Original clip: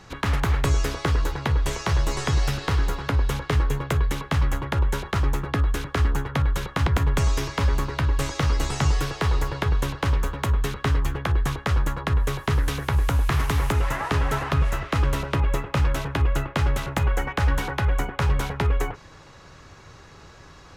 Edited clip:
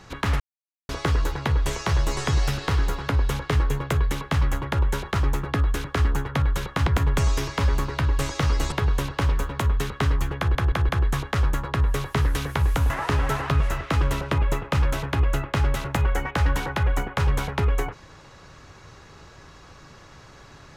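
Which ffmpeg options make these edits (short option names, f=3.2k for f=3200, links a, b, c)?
-filter_complex "[0:a]asplit=8[a][b][c][d][e][f][g][h];[a]atrim=end=0.4,asetpts=PTS-STARTPTS,afade=t=out:st=0.396:d=0.004:c=hsin[i];[b]atrim=start=0.4:end=0.89,asetpts=PTS-STARTPTS,volume=0[j];[c]atrim=start=0.89:end=8.722,asetpts=PTS-STARTPTS,afade=t=in:d=0.004:c=hsin[k];[d]atrim=start=9.558:end=11.392[l];[e]atrim=start=11.218:end=11.392[m];[f]atrim=start=11.218:end=11.392[n];[g]atrim=start=11.218:end=13.232[o];[h]atrim=start=13.918[p];[i][j][k]concat=n=3:v=0:a=1[q];[q][l]acrossfade=d=0.004:c1=hsin:c2=hsin[r];[r][m]acrossfade=d=0.004:c1=hsin:c2=hsin[s];[s][n]acrossfade=d=0.004:c1=hsin:c2=hsin[t];[t][o]acrossfade=d=0.004:c1=hsin:c2=hsin[u];[u][p]acrossfade=d=0.004:c1=hsin:c2=hsin"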